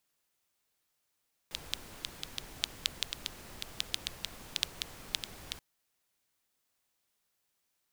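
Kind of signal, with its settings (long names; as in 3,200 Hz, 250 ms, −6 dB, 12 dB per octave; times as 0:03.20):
rain-like ticks over hiss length 4.08 s, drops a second 5.2, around 3,500 Hz, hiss −7 dB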